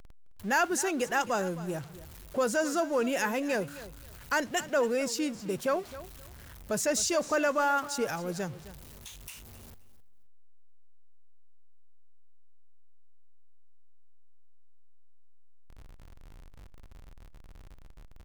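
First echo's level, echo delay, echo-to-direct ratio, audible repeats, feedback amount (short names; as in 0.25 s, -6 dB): -16.0 dB, 0.263 s, -16.0 dB, 2, 20%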